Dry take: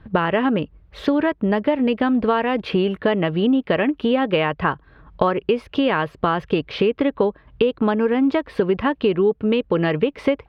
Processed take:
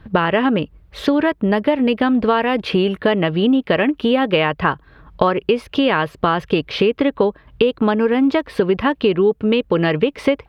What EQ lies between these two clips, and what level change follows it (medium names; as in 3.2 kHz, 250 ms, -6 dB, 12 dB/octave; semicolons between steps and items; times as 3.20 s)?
treble shelf 4.6 kHz +9.5 dB; +2.5 dB